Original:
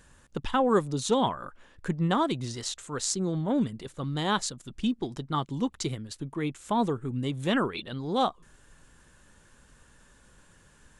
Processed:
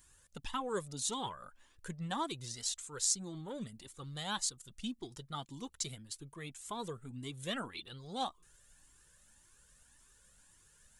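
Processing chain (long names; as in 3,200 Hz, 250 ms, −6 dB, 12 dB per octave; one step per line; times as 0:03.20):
first-order pre-emphasis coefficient 0.8
flanger whose copies keep moving one way rising 1.8 Hz
level +4.5 dB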